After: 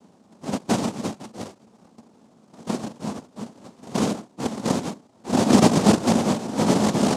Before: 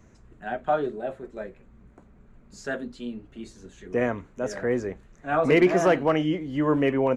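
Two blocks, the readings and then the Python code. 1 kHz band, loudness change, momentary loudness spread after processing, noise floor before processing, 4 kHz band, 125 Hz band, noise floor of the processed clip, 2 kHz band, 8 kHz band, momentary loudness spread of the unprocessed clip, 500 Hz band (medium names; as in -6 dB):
+2.5 dB, +2.5 dB, 22 LU, -55 dBFS, +10.0 dB, +6.5 dB, -57 dBFS, -3.5 dB, no reading, 20 LU, -2.0 dB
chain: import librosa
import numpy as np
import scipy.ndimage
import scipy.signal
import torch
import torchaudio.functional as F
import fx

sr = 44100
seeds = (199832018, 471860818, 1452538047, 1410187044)

y = fx.sample_hold(x, sr, seeds[0], rate_hz=1000.0, jitter_pct=0)
y = fx.noise_vocoder(y, sr, seeds[1], bands=2)
y = fx.peak_eq(y, sr, hz=220.0, db=14.0, octaves=0.84)
y = y * librosa.db_to_amplitude(-2.0)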